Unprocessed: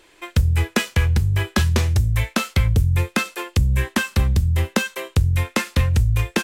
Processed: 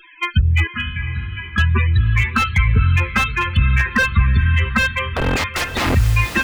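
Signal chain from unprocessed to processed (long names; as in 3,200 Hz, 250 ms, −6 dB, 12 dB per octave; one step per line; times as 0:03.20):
flat-topped bell 2,100 Hz +10.5 dB 2.5 octaves
in parallel at −1.5 dB: downward compressor 8 to 1, threshold −21 dBFS, peak gain reduction 13 dB
on the sum: spectral peaks only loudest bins 16
0:00.67–0:01.58: tuned comb filter 61 Hz, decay 0.67 s, harmonics all, mix 90%
0:05.09–0:05.95: wrap-around overflow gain 13.5 dB
on a send: feedback delay with all-pass diffusion 506 ms, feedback 47%, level −12 dB
on the sum: slew-rate limiting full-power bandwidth 390 Hz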